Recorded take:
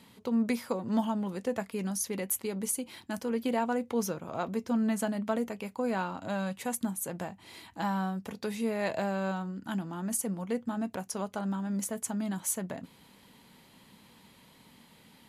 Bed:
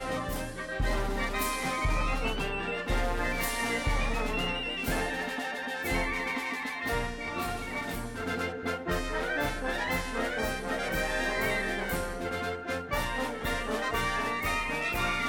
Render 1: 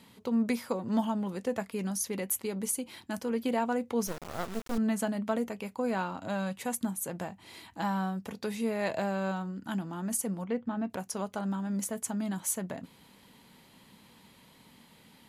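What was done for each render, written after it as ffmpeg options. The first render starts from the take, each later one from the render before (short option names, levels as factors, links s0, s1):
-filter_complex "[0:a]asettb=1/sr,asplit=3[s0][s1][s2];[s0]atrim=end=4.074[s3];[s1]atrim=start=4.07:end=4.78,asetpts=PTS-STARTPTS,afade=t=in:d=0.004:c=qsin,afade=t=out:st=0.706:d=0.004:c=qsin,acrusher=bits=4:dc=4:mix=0:aa=0.000001[s4];[s2]atrim=start=4.776[s5];[s3][s4]acrossfade=d=0.004:c1=hsin:c2=qsin[s6];[s6][s5]acrossfade=d=0.004:c1=qsin:c2=hsin,asettb=1/sr,asplit=3[s7][s8][s9];[s7]atrim=end=10.444[s10];[s8]atrim=start=10.44:end=10.9,asetpts=PTS-STARTPTS,afade=t=in:d=0.004:c=qsin,afade=t=out:st=0.456:d=0.004:c=qsin,lowpass=3200[s11];[s9]atrim=start=10.896[s12];[s10][s11]acrossfade=d=0.004:c1=hsin:c2=qsin[s13];[s13][s12]acrossfade=d=0.004:c1=qsin:c2=hsin"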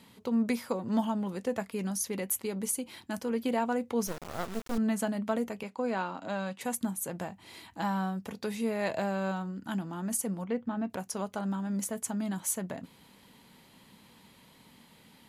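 -filter_complex "[0:a]asettb=1/sr,asplit=3[s0][s1][s2];[s0]atrim=end=5.634[s3];[s1]atrim=start=5.63:end=6.61,asetpts=PTS-STARTPTS,afade=t=in:d=0.004:c=qsin,afade=t=out:st=0.976:d=0.004:c=qsin,highpass=200,lowpass=6800[s4];[s2]atrim=start=6.606[s5];[s3][s4]acrossfade=d=0.004:c1=hsin:c2=qsin[s6];[s6][s5]acrossfade=d=0.004:c1=qsin:c2=hsin"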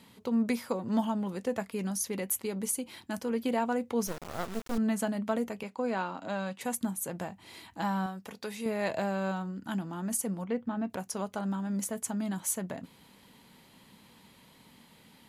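-filter_complex "[0:a]asettb=1/sr,asplit=3[s0][s1][s2];[s0]atrim=end=8.064[s3];[s1]atrim=start=8.06:end=8.66,asetpts=PTS-STARTPTS,afade=t=in:d=0.004:c=qsin,afade=t=out:st=0.596:d=0.004:c=qsin,lowshelf=f=360:g=-9[s4];[s2]atrim=start=8.656[s5];[s3][s4]acrossfade=d=0.004:c1=hsin:c2=qsin[s6];[s6][s5]acrossfade=d=0.004:c1=qsin:c2=hsin"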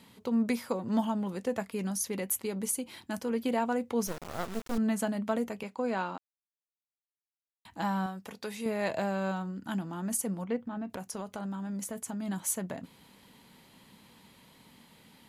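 -filter_complex "[0:a]asettb=1/sr,asplit=3[s0][s1][s2];[s0]atrim=end=10.564[s3];[s1]atrim=start=10.56:end=12.28,asetpts=PTS-STARTPTS,afade=t=in:d=0.004:c=qsin,afade=t=out:st=1.716:d=0.004:c=qsin,acompressor=threshold=0.0224:ratio=6:attack=3.2:release=140:knee=1:detection=peak[s4];[s2]atrim=start=12.276[s5];[s3][s4]acrossfade=d=0.004:c1=hsin:c2=qsin[s6];[s6][s5]acrossfade=d=0.004:c1=qsin:c2=hsin,asplit=3[s7][s8][s9];[s7]atrim=end=6.18,asetpts=PTS-STARTPTS,afade=t=out:st=6.176:d=0.004:c=hsin[s10];[s8]atrim=start=6.18:end=7.65,asetpts=PTS-STARTPTS,volume=0[s11];[s9]atrim=start=7.65,asetpts=PTS-STARTPTS,afade=t=in:d=0.004:c=hsin[s12];[s10][s11][s12]concat=n=3:v=0:a=1"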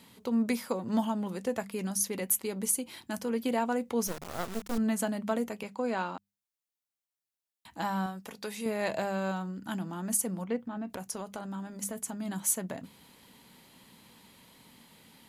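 -af "highshelf=f=5200:g=4.5,bandreject=f=50:t=h:w=6,bandreject=f=100:t=h:w=6,bandreject=f=150:t=h:w=6,bandreject=f=200:t=h:w=6"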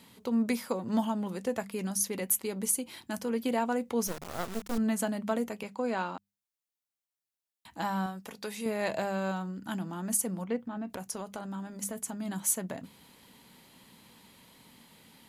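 -af anull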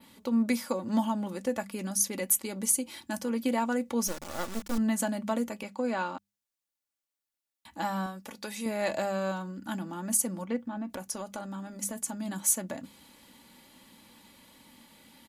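-af "aecho=1:1:3.5:0.49,adynamicequalizer=threshold=0.00501:dfrequency=6700:dqfactor=1:tfrequency=6700:tqfactor=1:attack=5:release=100:ratio=0.375:range=2:mode=boostabove:tftype=bell"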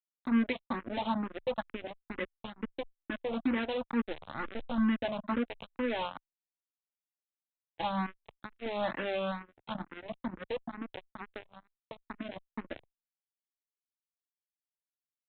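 -filter_complex "[0:a]aresample=8000,acrusher=bits=4:mix=0:aa=0.5,aresample=44100,asplit=2[s0][s1];[s1]afreqshift=2.2[s2];[s0][s2]amix=inputs=2:normalize=1"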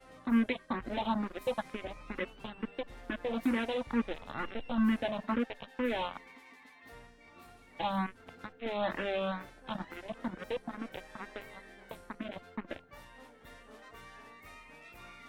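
-filter_complex "[1:a]volume=0.0794[s0];[0:a][s0]amix=inputs=2:normalize=0"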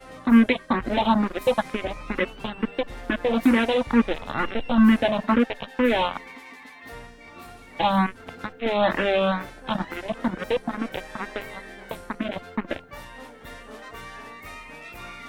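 -af "volume=3.98"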